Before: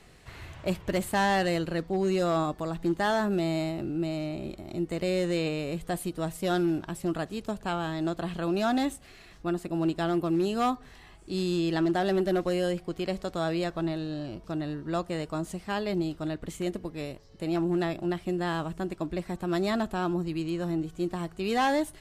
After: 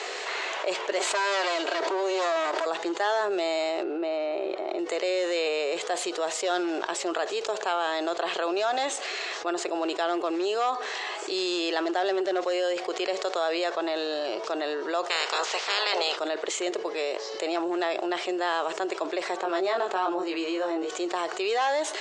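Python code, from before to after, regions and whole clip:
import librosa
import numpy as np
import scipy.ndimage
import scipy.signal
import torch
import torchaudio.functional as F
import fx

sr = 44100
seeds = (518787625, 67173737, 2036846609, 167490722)

y = fx.chain(x, sr, fx.lower_of_two(delay_ms=3.1),
    fx.highpass(hz=160.0, slope=12),
    fx.pre_swell(db_per_s=29.0), at=(0.98, 2.66))
y = fx.chain(y, sr, fx.bandpass_edges(low_hz=170.0, high_hz=4500.0),
    fx.high_shelf(hz=2400.0, db=-11.0), at=(3.83, 4.79))
y = fx.spec_clip(y, sr, under_db=29, at=(15.09, 16.15), fade=0.02)
y = fx.lowpass(y, sr, hz=5800.0, slope=12, at=(15.09, 16.15), fade=0.02)
y = fx.chain(y, sr, fx.high_shelf(hz=3700.0, db=-9.0),
    fx.doubler(ms=21.0, db=-3.5), at=(19.37, 20.9))
y = scipy.signal.sosfilt(scipy.signal.cheby1(4, 1.0, [410.0, 7200.0], 'bandpass', fs=sr, output='sos'), y)
y = fx.env_flatten(y, sr, amount_pct=70)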